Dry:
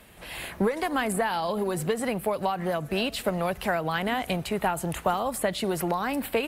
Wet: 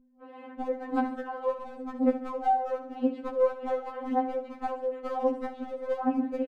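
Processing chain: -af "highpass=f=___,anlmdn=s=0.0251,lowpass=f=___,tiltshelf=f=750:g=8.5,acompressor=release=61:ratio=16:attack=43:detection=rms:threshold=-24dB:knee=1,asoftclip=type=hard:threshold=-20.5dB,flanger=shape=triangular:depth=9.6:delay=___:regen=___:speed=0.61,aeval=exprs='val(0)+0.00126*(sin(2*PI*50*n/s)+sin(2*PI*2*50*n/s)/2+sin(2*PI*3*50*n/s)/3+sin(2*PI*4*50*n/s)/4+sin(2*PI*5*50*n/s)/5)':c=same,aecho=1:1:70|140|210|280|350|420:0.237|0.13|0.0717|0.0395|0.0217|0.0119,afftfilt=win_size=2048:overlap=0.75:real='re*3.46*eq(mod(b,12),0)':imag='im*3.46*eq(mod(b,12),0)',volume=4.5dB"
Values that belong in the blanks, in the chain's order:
280, 1.2k, 9.5, -72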